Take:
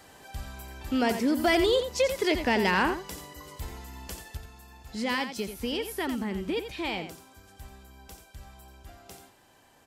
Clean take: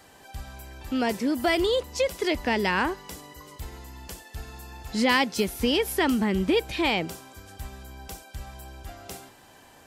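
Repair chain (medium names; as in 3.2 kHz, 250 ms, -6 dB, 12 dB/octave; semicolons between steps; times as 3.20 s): clip repair -15.5 dBFS; inverse comb 87 ms -9.5 dB; gain correction +8 dB, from 4.37 s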